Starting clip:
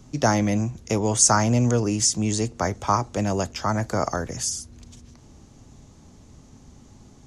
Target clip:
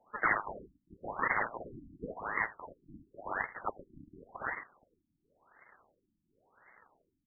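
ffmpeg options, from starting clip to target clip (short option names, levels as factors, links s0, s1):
-filter_complex "[0:a]acrusher=samples=30:mix=1:aa=0.000001:lfo=1:lforange=48:lforate=1.8,asoftclip=type=tanh:threshold=0.335,lowpass=f=2700:t=q:w=0.5098,lowpass=f=2700:t=q:w=0.6013,lowpass=f=2700:t=q:w=0.9,lowpass=f=2700:t=q:w=2.563,afreqshift=-3200,asplit=2[s0][s1];[s1]aecho=0:1:81:0.106[s2];[s0][s2]amix=inputs=2:normalize=0,afftfilt=real='re*lt(b*sr/1024,310*pow(2200/310,0.5+0.5*sin(2*PI*0.93*pts/sr)))':imag='im*lt(b*sr/1024,310*pow(2200/310,0.5+0.5*sin(2*PI*0.93*pts/sr)))':win_size=1024:overlap=0.75,volume=1.41"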